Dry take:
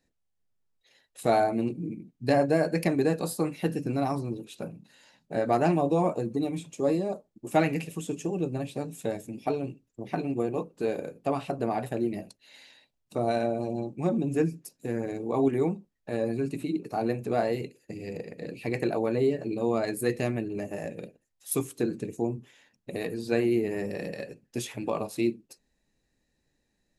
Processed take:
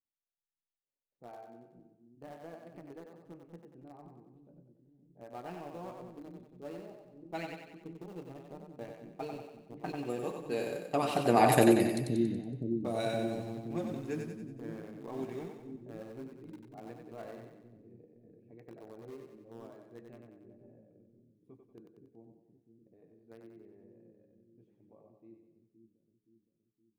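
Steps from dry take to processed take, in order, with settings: Doppler pass-by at 11.56 s, 10 m/s, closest 1.6 m; level-controlled noise filter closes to 430 Hz, open at -44.5 dBFS; treble shelf 2.2 kHz +9.5 dB; in parallel at -7.5 dB: small samples zeroed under -51.5 dBFS; on the sum: two-band feedback delay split 340 Hz, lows 519 ms, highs 93 ms, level -4.5 dB; gain riding within 3 dB 2 s; trim +5 dB

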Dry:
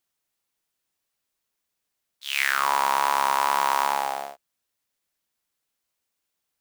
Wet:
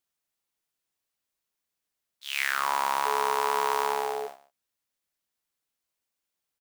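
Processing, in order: delay 146 ms -18.5 dB; 3.05–4.26 s: whistle 430 Hz -27 dBFS; trim -4.5 dB

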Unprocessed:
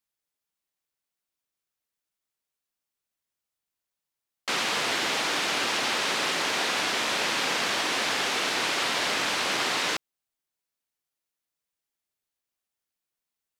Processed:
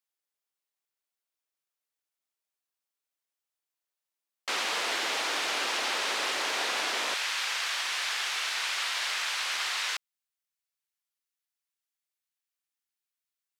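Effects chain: high-pass 380 Hz 12 dB/octave, from 7.14 s 1.2 kHz; trim -3 dB

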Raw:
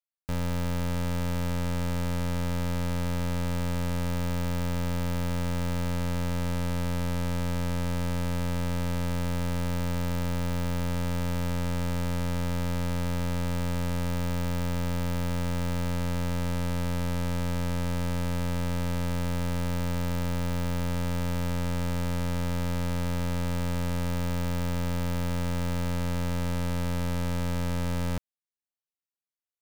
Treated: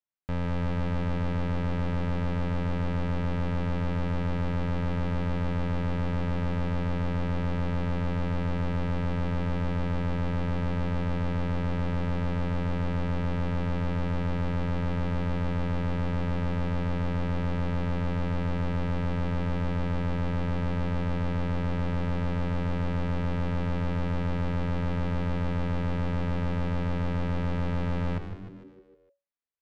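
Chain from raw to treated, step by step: low-pass 2.7 kHz 12 dB/octave; frequency-shifting echo 152 ms, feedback 54%, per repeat -94 Hz, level -9 dB

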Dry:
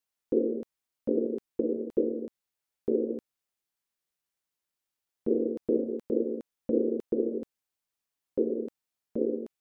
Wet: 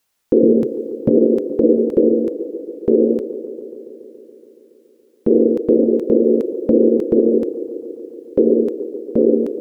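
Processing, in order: 0.43–1.15 s: peaking EQ 140 Hz +15 dB 0.65 oct; gain riding within 5 dB 0.5 s; feedback echo behind a band-pass 141 ms, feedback 77%, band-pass 450 Hz, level -13.5 dB; loudness maximiser +20 dB; trim -2.5 dB

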